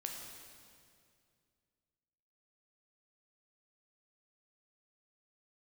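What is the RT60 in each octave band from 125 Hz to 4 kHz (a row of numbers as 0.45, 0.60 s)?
2.9, 2.7, 2.4, 2.1, 2.1, 2.0 s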